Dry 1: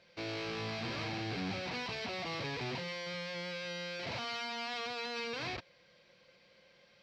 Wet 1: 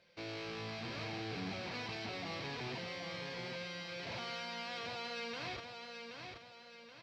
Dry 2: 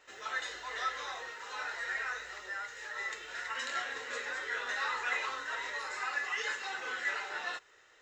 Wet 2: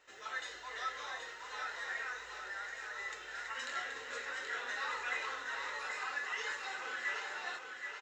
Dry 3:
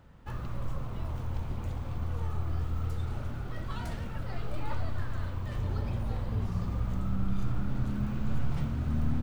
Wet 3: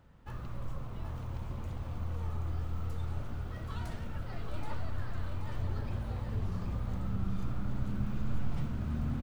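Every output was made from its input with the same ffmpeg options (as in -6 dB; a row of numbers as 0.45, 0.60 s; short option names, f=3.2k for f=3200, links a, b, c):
-af "aecho=1:1:777|1554|2331|3108|3885:0.501|0.216|0.0927|0.0398|0.0171,volume=-4.5dB"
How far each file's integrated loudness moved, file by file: -4.0, -3.5, -3.5 LU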